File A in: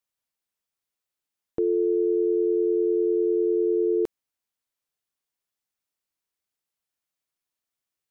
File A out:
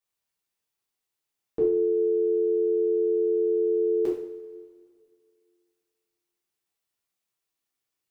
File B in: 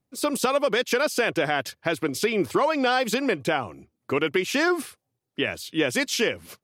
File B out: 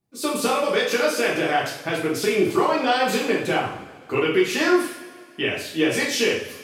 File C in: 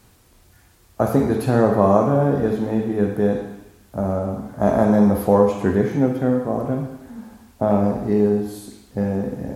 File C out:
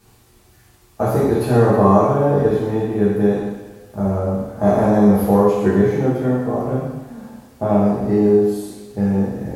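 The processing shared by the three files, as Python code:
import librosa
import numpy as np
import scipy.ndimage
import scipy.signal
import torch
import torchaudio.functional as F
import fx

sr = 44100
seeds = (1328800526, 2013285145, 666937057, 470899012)

y = fx.rev_double_slope(x, sr, seeds[0], early_s=0.58, late_s=2.3, knee_db=-18, drr_db=-6.0)
y = F.gain(torch.from_numpy(y), -4.5).numpy()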